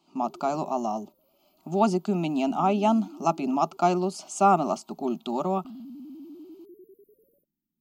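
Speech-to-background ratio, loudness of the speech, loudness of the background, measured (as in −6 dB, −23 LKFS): 20.0 dB, −26.0 LKFS, −46.0 LKFS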